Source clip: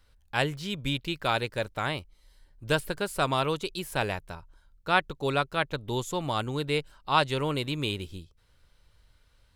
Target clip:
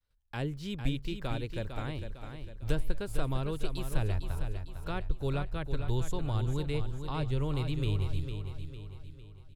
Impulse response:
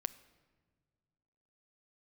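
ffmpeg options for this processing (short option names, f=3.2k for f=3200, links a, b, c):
-filter_complex "[0:a]agate=range=-33dB:threshold=-50dB:ratio=3:detection=peak,asubboost=boost=11.5:cutoff=62,acrossover=split=380[a][b];[b]acompressor=threshold=-45dB:ratio=3[c];[a][c]amix=inputs=2:normalize=0,aecho=1:1:453|906|1359|1812|2265:0.398|0.183|0.0842|0.0388|0.0178"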